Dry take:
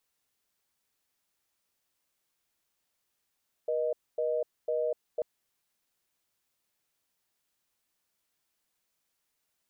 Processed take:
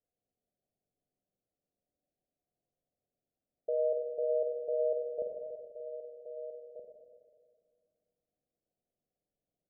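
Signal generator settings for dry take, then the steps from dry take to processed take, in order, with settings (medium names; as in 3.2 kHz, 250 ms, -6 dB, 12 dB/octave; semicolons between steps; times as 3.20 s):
call progress tone reorder tone, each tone -29.5 dBFS 1.54 s
rippled Chebyshev low-pass 750 Hz, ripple 3 dB; echo from a far wall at 270 m, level -11 dB; spring tank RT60 2 s, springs 41/48/53 ms, chirp 50 ms, DRR 1.5 dB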